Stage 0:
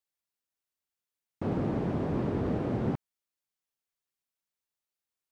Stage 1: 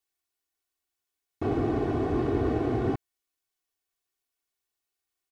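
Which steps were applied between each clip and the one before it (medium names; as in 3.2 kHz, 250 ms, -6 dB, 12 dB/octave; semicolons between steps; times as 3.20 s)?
comb 2.7 ms, depth 86%; trim +2 dB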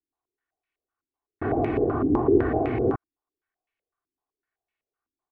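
step-sequenced low-pass 7.9 Hz 290–2300 Hz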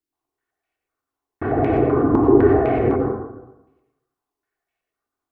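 plate-style reverb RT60 1 s, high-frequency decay 0.35×, pre-delay 80 ms, DRR 1 dB; trim +3.5 dB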